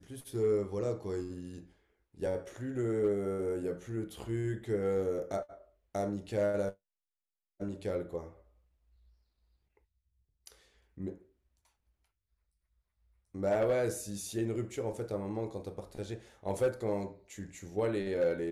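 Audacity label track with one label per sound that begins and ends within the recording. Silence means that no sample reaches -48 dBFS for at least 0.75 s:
7.600000	8.330000	sound
10.460000	11.180000	sound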